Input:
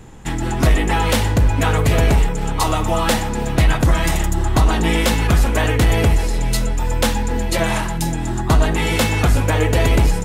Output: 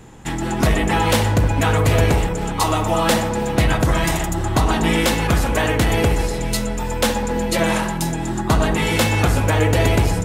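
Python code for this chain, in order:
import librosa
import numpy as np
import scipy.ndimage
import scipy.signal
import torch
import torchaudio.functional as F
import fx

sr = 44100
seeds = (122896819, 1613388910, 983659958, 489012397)

y = fx.low_shelf(x, sr, hz=67.0, db=-9.0)
y = fx.echo_wet_lowpass(y, sr, ms=67, feedback_pct=71, hz=1300.0, wet_db=-9)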